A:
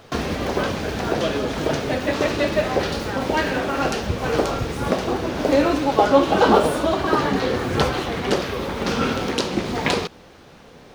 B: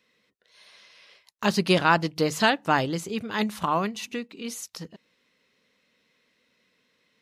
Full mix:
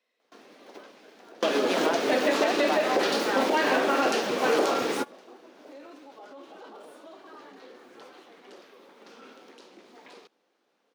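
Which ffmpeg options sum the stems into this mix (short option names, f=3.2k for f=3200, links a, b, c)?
-filter_complex "[0:a]alimiter=limit=-12.5dB:level=0:latency=1:release=16,adelay=200,volume=1.5dB[a];[1:a]equalizer=f=690:w=2.5:g=12,volume=-11dB,asplit=2[b][c];[c]apad=whole_len=491618[d];[a][d]sidechaingate=range=-27dB:threshold=-59dB:ratio=16:detection=peak[e];[e][b]amix=inputs=2:normalize=0,highpass=f=260:w=0.5412,highpass=f=260:w=1.3066,alimiter=limit=-13.5dB:level=0:latency=1:release=184"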